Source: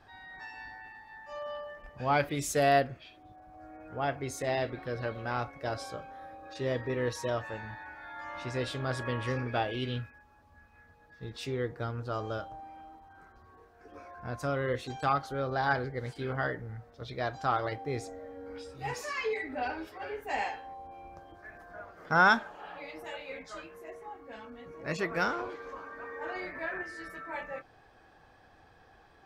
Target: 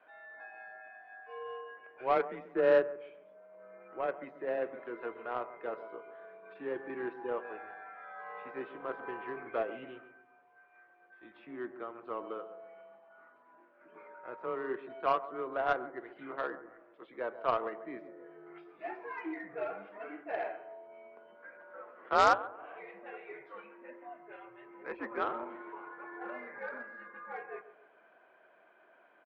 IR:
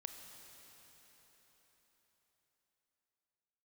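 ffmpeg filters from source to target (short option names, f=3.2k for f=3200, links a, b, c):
-filter_complex "[0:a]aemphasis=mode=production:type=75kf,acrossover=split=1500[a][b];[b]acompressor=threshold=-49dB:ratio=6[c];[a][c]amix=inputs=2:normalize=0,highpass=f=470:t=q:w=0.5412,highpass=f=470:t=q:w=1.307,lowpass=f=2.7k:t=q:w=0.5176,lowpass=f=2.7k:t=q:w=0.7071,lowpass=f=2.7k:t=q:w=1.932,afreqshift=-120,asplit=2[d][e];[e]adelay=136,lowpass=f=1.5k:p=1,volume=-12dB,asplit=2[f][g];[g]adelay=136,lowpass=f=1.5k:p=1,volume=0.41,asplit=2[h][i];[i]adelay=136,lowpass=f=1.5k:p=1,volume=0.41,asplit=2[j][k];[k]adelay=136,lowpass=f=1.5k:p=1,volume=0.41[l];[d][f][h][j][l]amix=inputs=5:normalize=0,aeval=exprs='0.282*(cos(1*acos(clip(val(0)/0.282,-1,1)))-cos(1*PI/2))+0.0562*(cos(5*acos(clip(val(0)/0.282,-1,1)))-cos(5*PI/2))+0.0501*(cos(7*acos(clip(val(0)/0.282,-1,1)))-cos(7*PI/2))':c=same,volume=-1dB"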